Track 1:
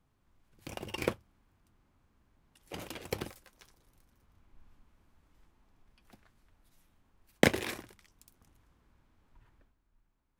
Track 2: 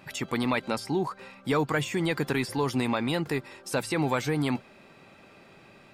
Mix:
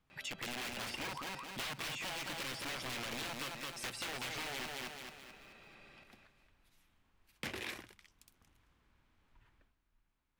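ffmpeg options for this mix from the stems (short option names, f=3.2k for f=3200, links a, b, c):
-filter_complex "[0:a]volume=-5.5dB[a];[1:a]aeval=exprs='(mod(15*val(0)+1,2)-1)/15':c=same,adelay=100,volume=-11dB,asplit=2[b][c];[c]volume=-5.5dB,aecho=0:1:217|434|651|868|1085|1302:1|0.42|0.176|0.0741|0.0311|0.0131[d];[a][b][d]amix=inputs=3:normalize=0,asoftclip=type=tanh:threshold=-37dB,equalizer=f=2.7k:w=0.6:g=8,acompressor=threshold=-38dB:ratio=6"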